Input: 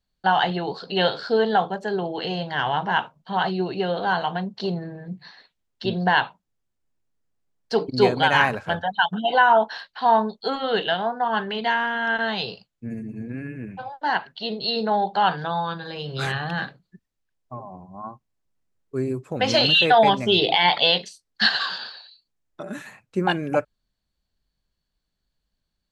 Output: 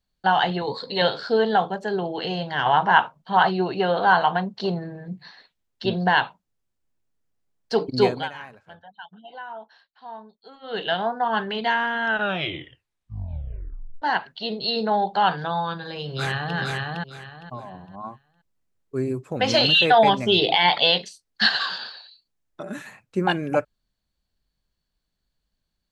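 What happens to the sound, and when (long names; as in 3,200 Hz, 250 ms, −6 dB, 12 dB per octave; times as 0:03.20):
0:00.61–0:01.02: EQ curve with evenly spaced ripples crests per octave 1, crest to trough 12 dB
0:02.65–0:05.96: dynamic equaliser 1,100 Hz, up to +7 dB, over −36 dBFS, Q 0.71
0:07.99–0:10.95: duck −21 dB, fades 0.34 s
0:12.06: tape stop 1.96 s
0:16.02–0:16.57: delay throw 460 ms, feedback 25%, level −2 dB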